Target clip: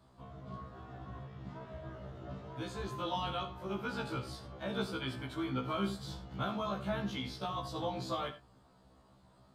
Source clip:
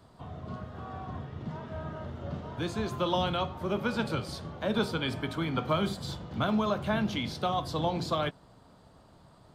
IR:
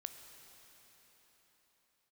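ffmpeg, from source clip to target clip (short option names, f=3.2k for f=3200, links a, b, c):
-filter_complex "[1:a]atrim=start_sample=2205,afade=t=out:st=0.24:d=0.01,atrim=end_sample=11025,asetrate=83790,aresample=44100[a];[0:a][a]afir=irnorm=-1:irlink=0,afftfilt=real='re*1.73*eq(mod(b,3),0)':imag='im*1.73*eq(mod(b,3),0)':win_size=2048:overlap=0.75,volume=5.5dB"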